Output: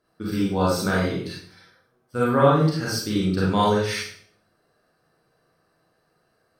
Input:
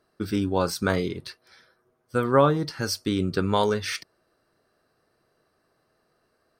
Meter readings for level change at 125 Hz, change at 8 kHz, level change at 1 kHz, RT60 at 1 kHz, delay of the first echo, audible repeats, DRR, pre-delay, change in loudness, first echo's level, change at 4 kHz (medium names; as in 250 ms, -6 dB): +4.5 dB, +1.5 dB, +3.0 dB, 0.50 s, no echo, no echo, -6.5 dB, 31 ms, +2.5 dB, no echo, +1.5 dB